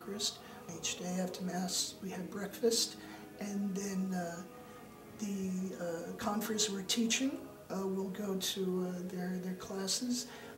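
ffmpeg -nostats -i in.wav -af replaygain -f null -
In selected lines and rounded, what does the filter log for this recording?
track_gain = +16.0 dB
track_peak = 0.097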